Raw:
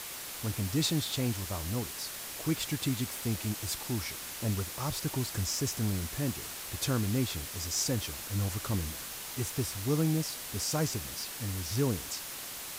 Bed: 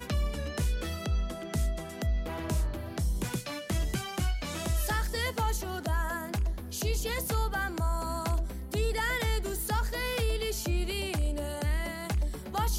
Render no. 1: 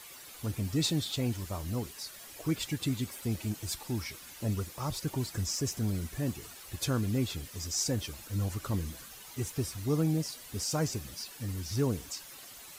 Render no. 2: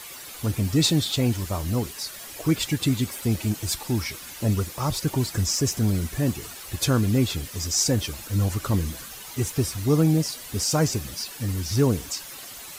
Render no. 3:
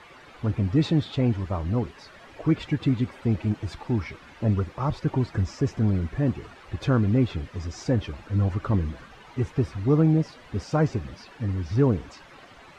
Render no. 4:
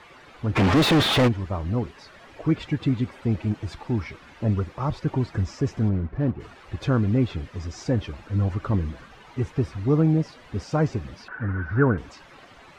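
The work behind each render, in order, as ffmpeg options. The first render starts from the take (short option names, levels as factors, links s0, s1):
-af "afftdn=nr=11:nf=-42"
-af "volume=2.82"
-af "lowpass=1900"
-filter_complex "[0:a]asplit=3[s0][s1][s2];[s0]afade=t=out:st=0.55:d=0.02[s3];[s1]asplit=2[s4][s5];[s5]highpass=f=720:p=1,volume=79.4,asoftclip=type=tanh:threshold=0.282[s6];[s4][s6]amix=inputs=2:normalize=0,lowpass=f=2500:p=1,volume=0.501,afade=t=in:st=0.55:d=0.02,afade=t=out:st=1.27:d=0.02[s7];[s2]afade=t=in:st=1.27:d=0.02[s8];[s3][s7][s8]amix=inputs=3:normalize=0,asplit=3[s9][s10][s11];[s9]afade=t=out:st=5.88:d=0.02[s12];[s10]adynamicsmooth=sensitivity=3:basefreq=1100,afade=t=in:st=5.88:d=0.02,afade=t=out:st=6.39:d=0.02[s13];[s11]afade=t=in:st=6.39:d=0.02[s14];[s12][s13][s14]amix=inputs=3:normalize=0,asettb=1/sr,asplit=3[s15][s16][s17];[s15]atrim=end=11.284[s18];[s16]atrim=start=11.28:end=11.98,asetpts=PTS-STARTPTS,afade=t=in:d=0.004:c=qsin,afade=t=out:st=0.696:d=0.004:c=qsin,lowpass=f=1500:t=q:w=12[s19];[s17]atrim=start=11.976[s20];[s18][s19]acrossfade=d=0.004:c1=hsin:c2=qsin[s21];[s21][s20]acrossfade=d=0.004:c1=qsin:c2=hsin"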